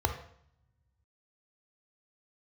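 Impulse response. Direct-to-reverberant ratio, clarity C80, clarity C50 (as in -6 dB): 6.0 dB, 13.0 dB, 9.0 dB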